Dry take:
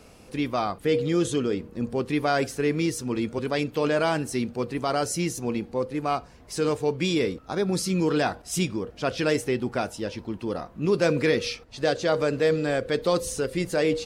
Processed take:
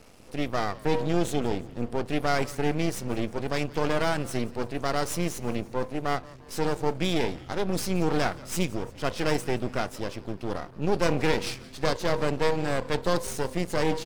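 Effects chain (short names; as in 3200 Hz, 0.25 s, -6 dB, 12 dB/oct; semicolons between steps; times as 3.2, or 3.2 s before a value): half-wave rectifier; frequency-shifting echo 0.173 s, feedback 54%, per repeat -130 Hz, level -20 dB; gain +1.5 dB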